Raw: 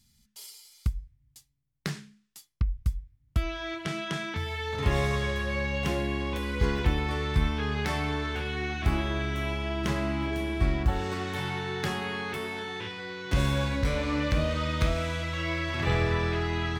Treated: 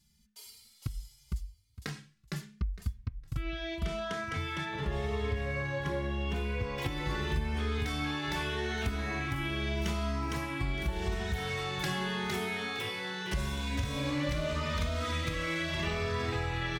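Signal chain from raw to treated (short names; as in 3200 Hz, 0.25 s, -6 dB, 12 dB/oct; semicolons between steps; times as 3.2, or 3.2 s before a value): feedback echo 0.459 s, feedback 19%, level -3 dB; compressor, threshold -26 dBFS, peak gain reduction 10 dB; high shelf 3600 Hz -2.5 dB, from 4.65 s -8 dB, from 6.78 s +5.5 dB; endless flanger 3 ms +0.83 Hz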